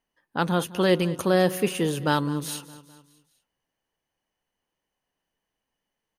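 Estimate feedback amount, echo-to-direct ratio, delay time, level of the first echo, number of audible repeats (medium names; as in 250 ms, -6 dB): 52%, -16.5 dB, 206 ms, -18.0 dB, 3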